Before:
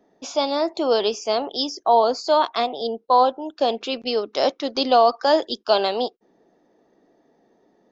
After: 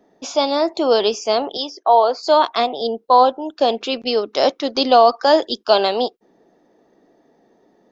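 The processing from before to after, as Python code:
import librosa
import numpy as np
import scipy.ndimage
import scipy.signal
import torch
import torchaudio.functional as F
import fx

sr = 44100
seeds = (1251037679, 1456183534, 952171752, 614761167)

y = fx.bandpass_edges(x, sr, low_hz=430.0, high_hz=3700.0, at=(1.57, 2.23))
y = F.gain(torch.from_numpy(y), 4.0).numpy()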